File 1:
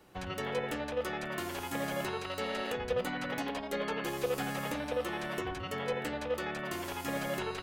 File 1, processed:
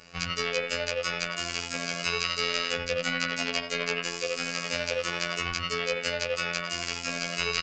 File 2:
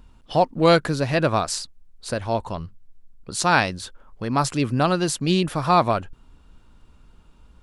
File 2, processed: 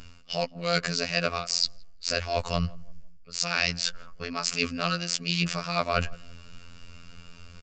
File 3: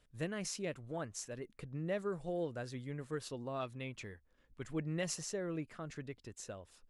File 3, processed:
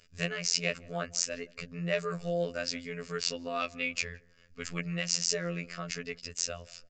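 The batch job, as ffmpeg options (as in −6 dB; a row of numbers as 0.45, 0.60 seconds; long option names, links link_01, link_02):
-filter_complex "[0:a]crystalizer=i=7.5:c=0,equalizer=frequency=4900:width=6.9:gain=9,areverse,acompressor=threshold=-28dB:ratio=8,areverse,afftfilt=real='hypot(re,im)*cos(PI*b)':imag='0':win_size=2048:overlap=0.75,asplit=2[link_01][link_02];[link_02]adynamicsmooth=sensitivity=5:basefreq=3700,volume=0.5dB[link_03];[link_01][link_03]amix=inputs=2:normalize=0,aresample=16000,aresample=44100,superequalizer=6b=0.282:9b=0.398:12b=1.58:13b=0.631,asplit=2[link_04][link_05];[link_05]adelay=168,lowpass=frequency=1000:poles=1,volume=-21dB,asplit=2[link_06][link_07];[link_07]adelay=168,lowpass=frequency=1000:poles=1,volume=0.38,asplit=2[link_08][link_09];[link_09]adelay=168,lowpass=frequency=1000:poles=1,volume=0.38[link_10];[link_04][link_06][link_08][link_10]amix=inputs=4:normalize=0,volume=2dB"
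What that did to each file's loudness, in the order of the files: +6.5, −6.5, +8.5 LU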